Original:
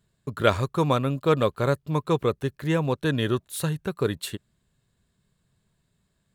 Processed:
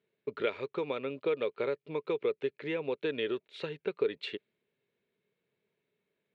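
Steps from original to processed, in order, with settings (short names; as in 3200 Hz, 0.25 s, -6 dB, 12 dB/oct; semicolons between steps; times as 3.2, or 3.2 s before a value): compressor 12:1, threshold -25 dBFS, peak gain reduction 12 dB; speaker cabinet 380–3700 Hz, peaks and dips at 430 Hz +9 dB, 720 Hz -7 dB, 1100 Hz -9 dB, 1600 Hz -5 dB, 2300 Hz +9 dB; mismatched tape noise reduction decoder only; gain -2 dB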